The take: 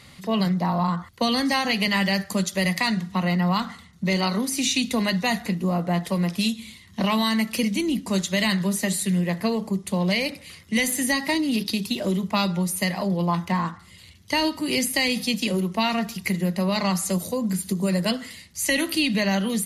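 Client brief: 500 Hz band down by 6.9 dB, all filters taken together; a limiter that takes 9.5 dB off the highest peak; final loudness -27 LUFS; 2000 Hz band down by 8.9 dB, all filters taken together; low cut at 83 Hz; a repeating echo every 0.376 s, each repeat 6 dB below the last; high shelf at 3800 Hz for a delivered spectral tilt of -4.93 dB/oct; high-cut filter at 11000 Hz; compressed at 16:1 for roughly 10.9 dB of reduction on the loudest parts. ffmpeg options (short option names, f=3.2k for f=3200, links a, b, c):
-af "highpass=83,lowpass=11k,equalizer=f=500:t=o:g=-8.5,equalizer=f=2k:t=o:g=-8,highshelf=f=3.8k:g=-7.5,acompressor=threshold=-32dB:ratio=16,alimiter=level_in=6dB:limit=-24dB:level=0:latency=1,volume=-6dB,aecho=1:1:376|752|1128|1504|1880|2256:0.501|0.251|0.125|0.0626|0.0313|0.0157,volume=10.5dB"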